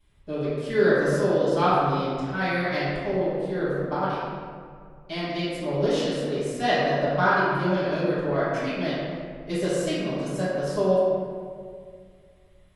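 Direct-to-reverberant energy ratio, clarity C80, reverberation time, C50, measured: -16.0 dB, -1.0 dB, 2.1 s, -3.5 dB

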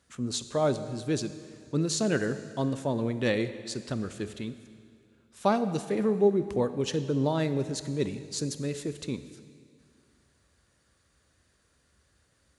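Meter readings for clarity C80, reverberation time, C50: 13.0 dB, 2.3 s, 12.0 dB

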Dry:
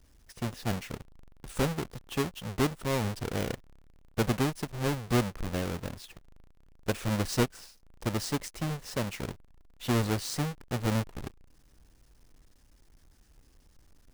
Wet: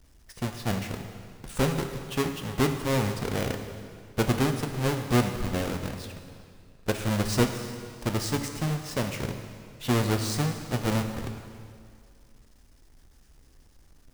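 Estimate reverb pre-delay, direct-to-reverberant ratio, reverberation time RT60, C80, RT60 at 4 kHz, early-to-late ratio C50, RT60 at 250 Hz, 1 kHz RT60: 5 ms, 5.5 dB, 2.2 s, 8.0 dB, 2.0 s, 7.0 dB, 2.2 s, 2.2 s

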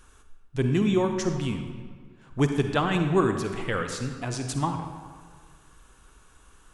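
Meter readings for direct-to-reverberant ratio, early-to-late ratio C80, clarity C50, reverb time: 5.5 dB, 7.5 dB, 6.0 dB, 1.7 s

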